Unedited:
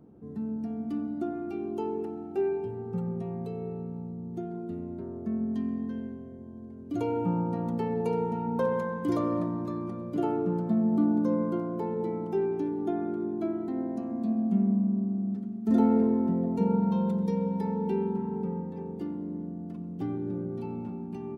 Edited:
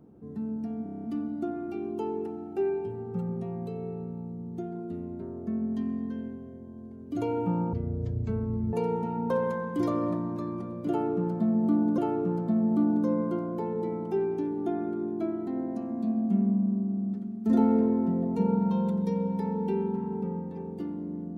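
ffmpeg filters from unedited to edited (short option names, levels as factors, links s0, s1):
-filter_complex "[0:a]asplit=11[s0][s1][s2][s3][s4][s5][s6][s7][s8][s9][s10];[s0]atrim=end=0.862[s11];[s1]atrim=start=0.828:end=0.862[s12];[s2]atrim=start=0.828:end=0.862[s13];[s3]atrim=start=0.828:end=0.862[s14];[s4]atrim=start=0.828:end=0.862[s15];[s5]atrim=start=0.828:end=0.862[s16];[s6]atrim=start=0.828:end=0.862[s17];[s7]atrim=start=0.828:end=7.524[s18];[s8]atrim=start=7.52:end=8.02,asetpts=PTS-STARTPTS,asetrate=22050,aresample=44100[s19];[s9]atrim=start=8.016:end=11.272[s20];[s10]atrim=start=10.188[s21];[s11][s12]acrossfade=d=0.004:c1=hsin:c2=hsin[s22];[s22][s13]acrossfade=d=0.004:c1=hsin:c2=hsin[s23];[s23][s14]acrossfade=d=0.004:c1=hsin:c2=hsin[s24];[s24][s15]acrossfade=d=0.004:c1=hsin:c2=hsin[s25];[s25][s16]acrossfade=d=0.004:c1=hsin:c2=hsin[s26];[s26][s17]acrossfade=d=0.004:c1=hsin:c2=hsin[s27];[s27][s18]acrossfade=d=0.004:c1=hsin:c2=hsin[s28];[s28][s19]acrossfade=d=0.004:c1=hsin:c2=hsin[s29];[s29][s20]acrossfade=d=0.004:c1=hsin:c2=hsin[s30];[s30][s21]acrossfade=d=0.004:c1=hsin:c2=hsin"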